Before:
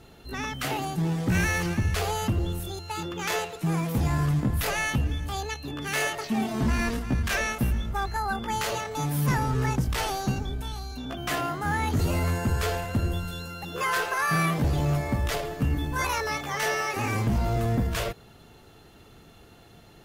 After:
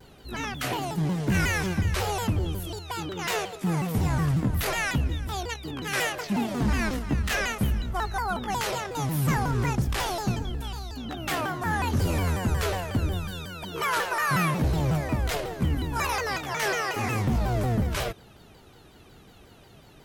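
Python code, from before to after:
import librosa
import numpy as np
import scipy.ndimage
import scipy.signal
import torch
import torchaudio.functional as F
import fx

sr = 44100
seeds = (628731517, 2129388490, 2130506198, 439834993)

y = fx.vibrato_shape(x, sr, shape='saw_down', rate_hz=5.5, depth_cents=250.0)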